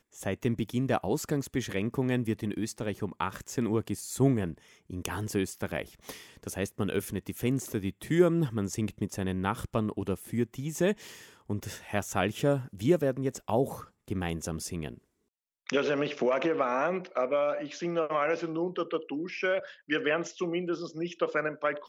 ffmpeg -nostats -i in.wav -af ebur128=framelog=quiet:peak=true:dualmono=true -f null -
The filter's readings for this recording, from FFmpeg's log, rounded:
Integrated loudness:
  I:         -28.0 LUFS
  Threshold: -38.2 LUFS
Loudness range:
  LRA:         2.9 LU
  Threshold: -48.3 LUFS
  LRA low:   -29.7 LUFS
  LRA high:  -26.8 LUFS
True peak:
  Peak:      -10.3 dBFS